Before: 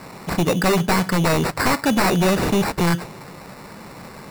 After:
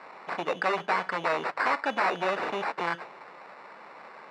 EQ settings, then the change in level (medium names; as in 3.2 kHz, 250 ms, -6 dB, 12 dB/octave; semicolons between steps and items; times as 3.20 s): band-pass 640–2300 Hz; -3.5 dB